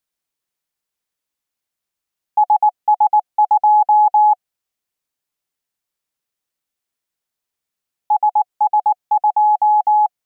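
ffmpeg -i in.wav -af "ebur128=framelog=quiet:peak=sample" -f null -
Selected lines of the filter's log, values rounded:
Integrated loudness:
  I:         -15.1 LUFS
  Threshold: -25.1 LUFS
Loudness range:
  LRA:         9.1 LU
  Threshold: -38.1 LUFS
  LRA low:   -24.6 LUFS
  LRA high:  -15.5 LUFS
Sample peak:
  Peak:       -6.9 dBFS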